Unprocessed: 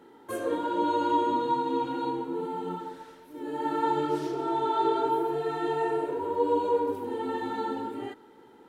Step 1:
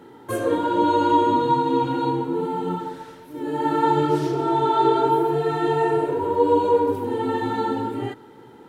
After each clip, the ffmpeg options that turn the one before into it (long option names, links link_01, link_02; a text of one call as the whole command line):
ffmpeg -i in.wav -af "equalizer=frequency=120:width_type=o:width=0.79:gain=12.5,volume=7dB" out.wav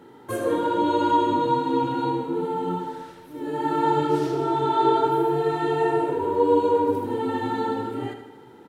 ffmpeg -i in.wav -af "aecho=1:1:78|156|234|312|390|468:0.355|0.195|0.107|0.059|0.0325|0.0179,volume=-2.5dB" out.wav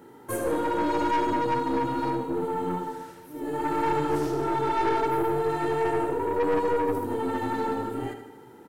ffmpeg -i in.wav -af "highshelf=frequency=7100:gain=9.5,aeval=exprs='(tanh(10*val(0)+0.4)-tanh(0.4))/10':channel_layout=same,equalizer=frequency=3600:width_type=o:width=0.67:gain=-6" out.wav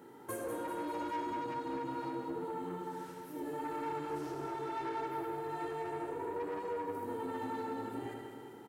ffmpeg -i in.wav -af "highpass=frequency=120:poles=1,acompressor=threshold=-33dB:ratio=6,aecho=1:1:195|390|585|780|975|1170:0.422|0.219|0.114|0.0593|0.0308|0.016,volume=-4.5dB" out.wav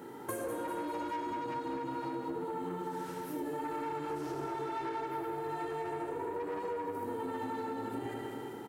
ffmpeg -i in.wav -af "acompressor=threshold=-42dB:ratio=6,volume=7.5dB" out.wav